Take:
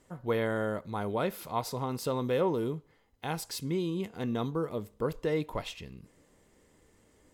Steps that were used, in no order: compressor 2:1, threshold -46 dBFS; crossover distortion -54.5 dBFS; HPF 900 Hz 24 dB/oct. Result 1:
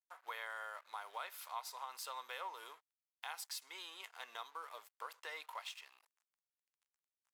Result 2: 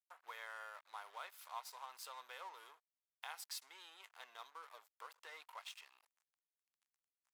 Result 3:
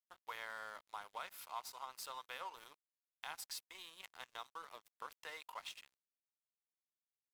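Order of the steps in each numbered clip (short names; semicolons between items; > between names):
crossover distortion > HPF > compressor; compressor > crossover distortion > HPF; HPF > compressor > crossover distortion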